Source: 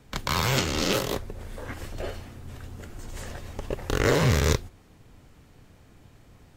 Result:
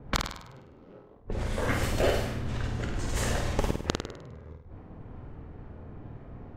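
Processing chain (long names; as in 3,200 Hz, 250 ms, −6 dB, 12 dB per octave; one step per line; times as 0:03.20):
gate with flip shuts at −20 dBFS, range −33 dB
low-pass that shuts in the quiet parts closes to 740 Hz, open at −32 dBFS
flutter between parallel walls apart 8.7 metres, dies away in 0.63 s
level +8 dB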